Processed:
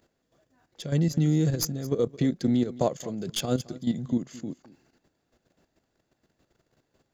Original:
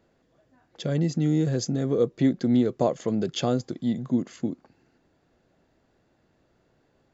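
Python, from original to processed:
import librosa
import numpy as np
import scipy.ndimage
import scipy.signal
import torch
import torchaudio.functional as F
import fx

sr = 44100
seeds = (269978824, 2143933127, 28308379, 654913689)

p1 = fx.tracing_dist(x, sr, depth_ms=0.042)
p2 = fx.dynamic_eq(p1, sr, hz=150.0, q=1.9, threshold_db=-37.0, ratio=4.0, max_db=4)
p3 = fx.level_steps(p2, sr, step_db=11)
p4 = fx.high_shelf(p3, sr, hz=4400.0, db=11.5)
y = p4 + fx.echo_single(p4, sr, ms=218, db=-19.0, dry=0)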